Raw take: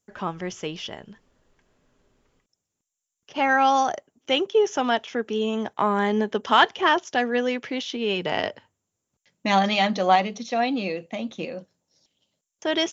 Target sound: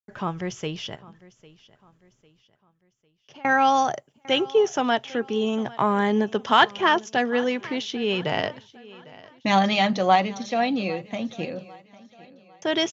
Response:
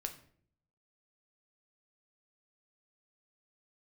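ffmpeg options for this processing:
-filter_complex "[0:a]asettb=1/sr,asplit=3[link_01][link_02][link_03];[link_01]atrim=end=0.954[link_04];[link_02]atrim=start=0.95:end=3.45,asetpts=PTS-STARTPTS,afade=type=in:duration=0.004:curve=qsin,afade=type=out:start_time=2.496:duration=0.004:curve=qsin,acompressor=threshold=-50dB:ratio=4[link_05];[link_03]atrim=start=3.446[link_06];[link_04][link_05]acrossfade=duration=0.004:curve1=hsin:curve2=qsin[link_07];[link_07][link_06]acrossfade=duration=0.004:curve1=qsin:curve2=hsin,equalizer=frequency=130:width=2.8:gain=12.5,agate=range=-33dB:threshold=-56dB:ratio=3:detection=peak,aecho=1:1:801|1602|2403:0.0891|0.0357|0.0143"

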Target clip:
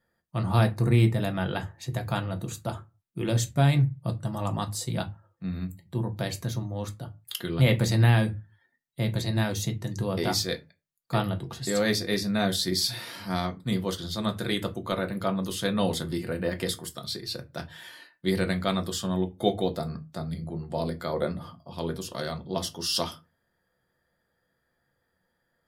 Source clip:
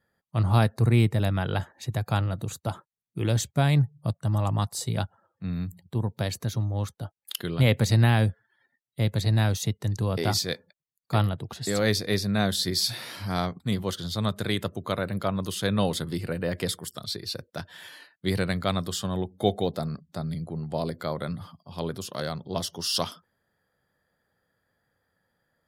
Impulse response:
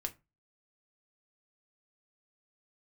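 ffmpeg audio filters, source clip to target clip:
-filter_complex "[0:a]asettb=1/sr,asplit=3[link_01][link_02][link_03];[link_01]atrim=end=21.134[link_04];[link_02]atrim=start=21.13:end=21.73,asetpts=PTS-STARTPTS,afade=type=in:duration=0.004:curve=qsin,afade=type=out:start_time=0.596:duration=0.004:curve=qsin,equalizer=frequency=480:width=1:gain=9[link_05];[link_03]atrim=start=21.726[link_06];[link_04][link_05]acrossfade=duration=0.004:curve1=hsin:curve2=qsin[link_07];[link_07][link_06]acrossfade=duration=0.004:curve1=qsin:curve2=hsin[link_08];[1:a]atrim=start_sample=2205,afade=type=out:start_time=0.35:duration=0.01,atrim=end_sample=15876[link_09];[link_08][link_09]afir=irnorm=-1:irlink=0"

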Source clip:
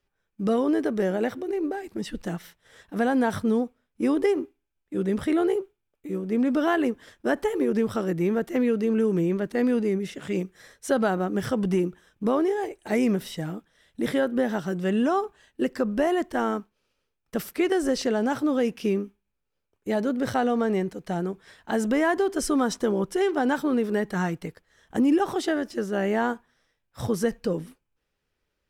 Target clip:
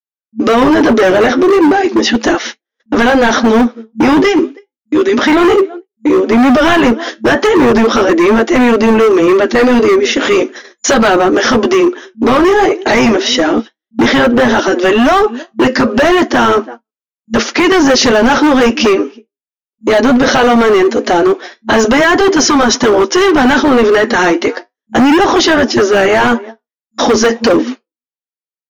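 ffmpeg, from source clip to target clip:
ffmpeg -i in.wav -filter_complex "[0:a]asplit=2[link_01][link_02];[link_02]adelay=326.5,volume=-29dB,highshelf=frequency=4000:gain=-7.35[link_03];[link_01][link_03]amix=inputs=2:normalize=0,agate=range=-58dB:threshold=-45dB:ratio=16:detection=peak,asettb=1/sr,asplit=3[link_04][link_05][link_06];[link_04]atrim=end=4.234[link_07];[link_05]atrim=start=4.23:end=5.17,asetpts=PTS-STARTPTS,afade=type=in:duration=0.004:curve=qsin,afade=type=out:start_time=0.936:duration=0.004:curve=qsin,equalizer=frequency=590:width_type=o:width=2.2:gain=-10[link_08];[link_06]atrim=start=5.166[link_09];[link_07][link_08]acrossfade=duration=0.004:curve1=hsin:curve2=qsin[link_10];[link_10][link_09]acrossfade=duration=0.004:curve1=qsin:curve2=hsin,asplit=2[link_11][link_12];[link_12]acompressor=threshold=-30dB:ratio=16,volume=1dB[link_13];[link_11][link_13]amix=inputs=2:normalize=0,flanger=delay=4.3:depth=6.4:regen=-66:speed=0.35:shape=triangular,afftfilt=real='re*between(b*sr/4096,220,7000)':imag='im*between(b*sr/4096,220,7000)':win_size=4096:overlap=0.75,flanger=delay=2.8:depth=3.7:regen=-32:speed=1.7:shape=triangular,acrossover=split=830|5300[link_14][link_15][link_16];[link_14]asoftclip=type=hard:threshold=-33.5dB[link_17];[link_17][link_15][link_16]amix=inputs=3:normalize=0,apsyclip=35.5dB,volume=-5dB" out.wav

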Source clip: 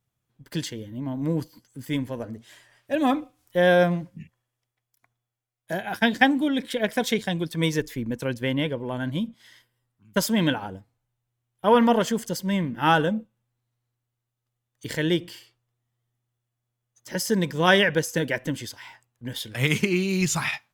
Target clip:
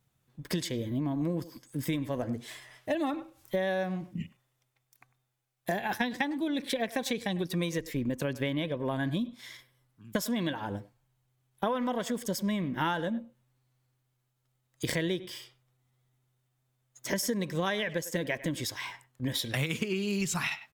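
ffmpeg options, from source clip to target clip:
ffmpeg -i in.wav -filter_complex "[0:a]asetrate=46722,aresample=44100,atempo=0.943874,asplit=2[link_01][link_02];[link_02]adelay=100,highpass=300,lowpass=3400,asoftclip=type=hard:threshold=-14dB,volume=-19dB[link_03];[link_01][link_03]amix=inputs=2:normalize=0,acompressor=threshold=-33dB:ratio=12,volume=5.5dB" out.wav

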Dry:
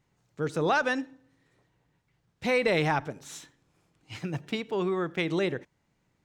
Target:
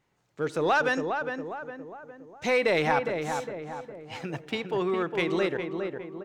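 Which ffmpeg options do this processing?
ffmpeg -i in.wav -filter_complex "[0:a]bass=frequency=250:gain=-8,treble=frequency=4000:gain=-4,asplit=2[link_01][link_02];[link_02]asoftclip=type=hard:threshold=-25.5dB,volume=-9dB[link_03];[link_01][link_03]amix=inputs=2:normalize=0,asettb=1/sr,asplit=3[link_04][link_05][link_06];[link_04]atrim=end=0.934[link_07];[link_05]atrim=start=0.93:end=2.49,asetpts=PTS-STARTPTS,afade=type=in:duration=0.004:curve=qsin,afade=type=out:start_time=1.556:duration=0.004:curve=qsin,equalizer=frequency=6400:width=5.3:gain=12.5[link_08];[link_06]atrim=start=2.486[link_09];[link_07][link_08]acrossfade=duration=0.004:curve1=hsin:curve2=qsin[link_10];[link_10][link_09]acrossfade=duration=0.004:curve1=qsin:curve2=hsin,asplit=2[link_11][link_12];[link_12]adelay=409,lowpass=frequency=1600:poles=1,volume=-5dB,asplit=2[link_13][link_14];[link_14]adelay=409,lowpass=frequency=1600:poles=1,volume=0.51,asplit=2[link_15][link_16];[link_16]adelay=409,lowpass=frequency=1600:poles=1,volume=0.51,asplit=2[link_17][link_18];[link_18]adelay=409,lowpass=frequency=1600:poles=1,volume=0.51,asplit=2[link_19][link_20];[link_20]adelay=409,lowpass=frequency=1600:poles=1,volume=0.51,asplit=2[link_21][link_22];[link_22]adelay=409,lowpass=frequency=1600:poles=1,volume=0.51[link_23];[link_11][link_13][link_15][link_17][link_19][link_21][link_23]amix=inputs=7:normalize=0" out.wav

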